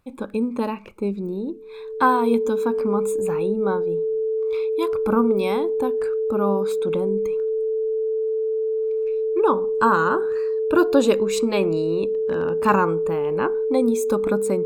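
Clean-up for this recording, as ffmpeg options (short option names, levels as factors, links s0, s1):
-af "bandreject=f=440:w=30"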